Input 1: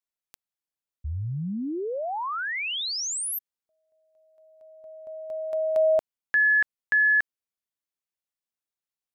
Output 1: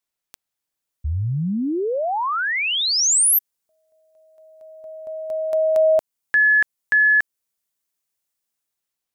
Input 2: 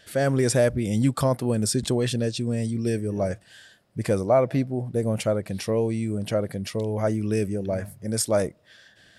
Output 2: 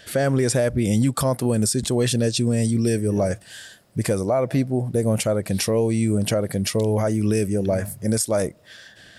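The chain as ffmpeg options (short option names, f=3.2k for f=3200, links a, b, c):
-filter_complex "[0:a]acrossover=split=5800[a][b];[b]dynaudnorm=f=390:g=5:m=7dB[c];[a][c]amix=inputs=2:normalize=0,alimiter=limit=-19.5dB:level=0:latency=1:release=254,volume=7.5dB"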